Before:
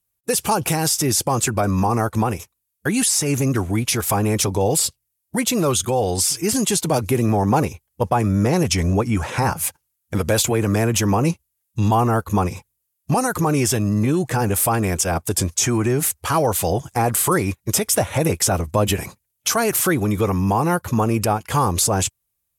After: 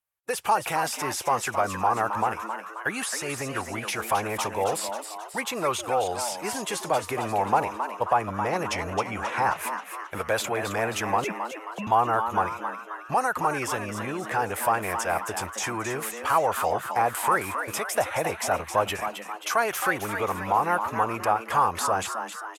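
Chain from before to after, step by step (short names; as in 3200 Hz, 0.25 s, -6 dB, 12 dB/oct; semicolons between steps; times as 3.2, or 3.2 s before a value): 11.24–11.87 sine-wave speech; three-band isolator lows -18 dB, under 570 Hz, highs -14 dB, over 2600 Hz; frequency-shifting echo 0.267 s, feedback 52%, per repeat +110 Hz, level -8 dB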